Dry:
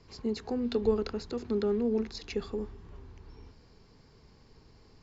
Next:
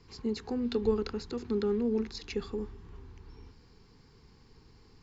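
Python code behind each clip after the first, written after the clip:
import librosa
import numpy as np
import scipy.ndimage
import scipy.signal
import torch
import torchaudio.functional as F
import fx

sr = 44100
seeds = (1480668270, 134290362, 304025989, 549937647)

y = fx.peak_eq(x, sr, hz=610.0, db=-15.0, octaves=0.25)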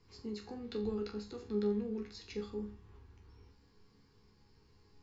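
y = fx.resonator_bank(x, sr, root=37, chord='sus4', decay_s=0.34)
y = F.gain(torch.from_numpy(y), 4.0).numpy()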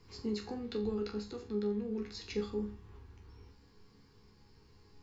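y = fx.rider(x, sr, range_db=4, speed_s=0.5)
y = F.gain(torch.from_numpy(y), 2.0).numpy()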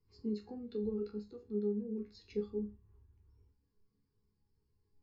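y = fx.spectral_expand(x, sr, expansion=1.5)
y = F.gain(torch.from_numpy(y), -1.0).numpy()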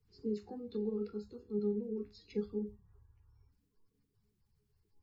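y = fx.spec_quant(x, sr, step_db=30)
y = F.gain(torch.from_numpy(y), 1.0).numpy()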